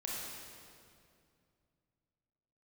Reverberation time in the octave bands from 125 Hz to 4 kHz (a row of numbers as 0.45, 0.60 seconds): 3.5, 3.0, 2.6, 2.2, 2.0, 1.9 seconds